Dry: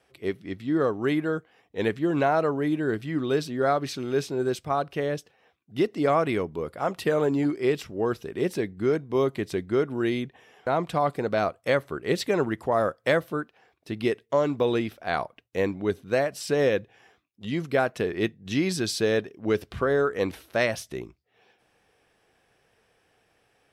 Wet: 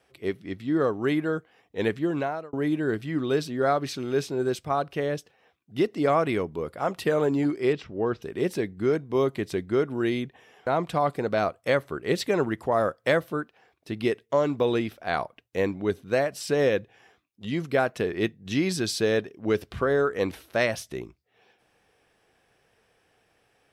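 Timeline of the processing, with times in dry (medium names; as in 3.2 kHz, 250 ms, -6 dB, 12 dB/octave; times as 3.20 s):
1.99–2.53 s: fade out
7.73–8.22 s: distance through air 170 m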